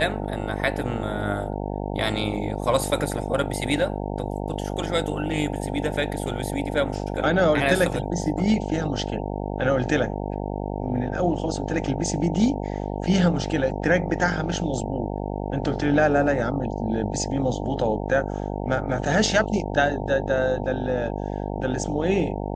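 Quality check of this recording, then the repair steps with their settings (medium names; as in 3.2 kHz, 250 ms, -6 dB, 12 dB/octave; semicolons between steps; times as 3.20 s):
buzz 50 Hz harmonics 18 -29 dBFS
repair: de-hum 50 Hz, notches 18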